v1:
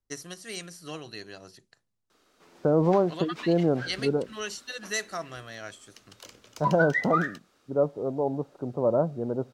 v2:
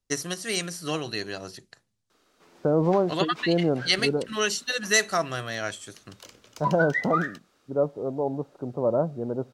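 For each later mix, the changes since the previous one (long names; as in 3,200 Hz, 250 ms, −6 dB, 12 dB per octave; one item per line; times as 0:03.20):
first voice +9.5 dB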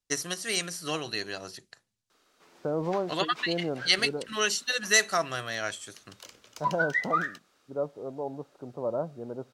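second voice −4.0 dB
master: add low-shelf EQ 480 Hz −6.5 dB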